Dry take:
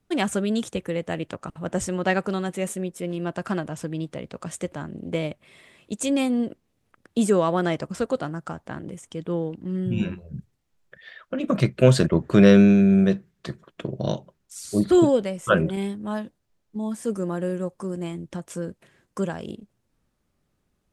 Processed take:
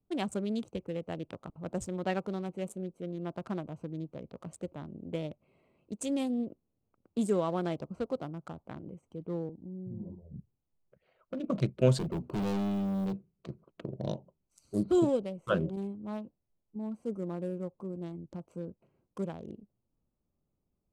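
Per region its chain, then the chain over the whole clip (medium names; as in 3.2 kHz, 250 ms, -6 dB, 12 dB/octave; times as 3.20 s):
9.49–10.36 s: steep low-pass 970 Hz 96 dB/octave + compression 2:1, threshold -34 dBFS
11.99–13.13 s: companded quantiser 6-bit + hum notches 60/120/180/240 Hz + overload inside the chain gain 21 dB
whole clip: local Wiener filter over 25 samples; dynamic bell 1.8 kHz, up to -6 dB, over -43 dBFS, Q 1.6; trim -8.5 dB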